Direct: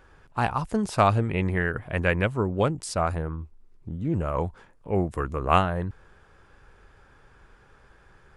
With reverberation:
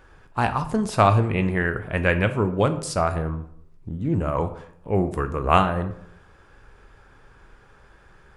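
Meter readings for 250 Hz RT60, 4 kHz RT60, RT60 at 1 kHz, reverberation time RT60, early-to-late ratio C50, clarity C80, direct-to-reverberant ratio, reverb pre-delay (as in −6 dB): 0.80 s, 0.40 s, 0.70 s, 0.70 s, 13.0 dB, 15.5 dB, 9.0 dB, 13 ms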